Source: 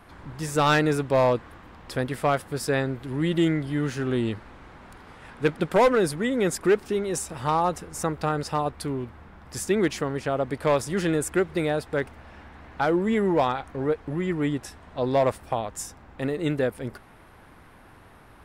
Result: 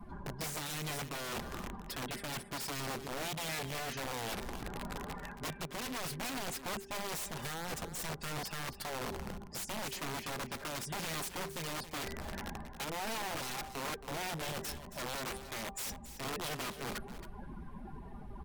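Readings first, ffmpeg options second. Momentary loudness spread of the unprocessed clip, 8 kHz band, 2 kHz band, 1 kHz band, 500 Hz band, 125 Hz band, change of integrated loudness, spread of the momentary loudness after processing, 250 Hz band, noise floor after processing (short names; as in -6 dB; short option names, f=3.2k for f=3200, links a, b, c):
12 LU, -4.5 dB, -9.5 dB, -13.0 dB, -19.5 dB, -14.5 dB, -14.0 dB, 6 LU, -18.0 dB, -49 dBFS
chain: -filter_complex "[0:a]bandreject=f=392.9:t=h:w=4,bandreject=f=785.8:t=h:w=4,bandreject=f=1.1787k:t=h:w=4,bandreject=f=1.5716k:t=h:w=4,bandreject=f=1.9645k:t=h:w=4,bandreject=f=2.3574k:t=h:w=4,bandreject=f=2.7503k:t=h:w=4,bandreject=f=3.1432k:t=h:w=4,bandreject=f=3.5361k:t=h:w=4,bandreject=f=3.929k:t=h:w=4,bandreject=f=4.3219k:t=h:w=4,bandreject=f=4.7148k:t=h:w=4,bandreject=f=5.1077k:t=h:w=4,bandreject=f=5.5006k:t=h:w=4,bandreject=f=5.8935k:t=h:w=4,afftdn=nr=23:nf=-44,bandreject=f=1.3k:w=5.1,adynamicequalizer=threshold=0.00501:dfrequency=3200:dqfactor=0.96:tfrequency=3200:tqfactor=0.96:attack=5:release=100:ratio=0.375:range=2.5:mode=boostabove:tftype=bell,aecho=1:1:5:0.75,acrossover=split=280|3000[a][b][c];[b]acompressor=threshold=-29dB:ratio=5[d];[a][d][c]amix=inputs=3:normalize=0,alimiter=limit=-22.5dB:level=0:latency=1:release=375,areverse,acompressor=threshold=-46dB:ratio=5,areverse,aeval=exprs='(mod(133*val(0)+1,2)-1)/133':c=same,aecho=1:1:273:0.251,volume=9dB" -ar 48000 -c:a libmp3lame -b:a 112k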